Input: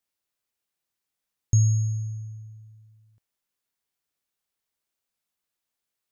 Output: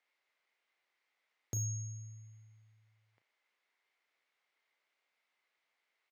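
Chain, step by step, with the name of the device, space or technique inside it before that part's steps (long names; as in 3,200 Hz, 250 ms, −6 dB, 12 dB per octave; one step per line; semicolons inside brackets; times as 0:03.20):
megaphone (band-pass filter 480–3,100 Hz; parametric band 2,100 Hz +10.5 dB 0.23 octaves; hard clipping −38.5 dBFS, distortion −18 dB; double-tracking delay 35 ms −11 dB)
level +7 dB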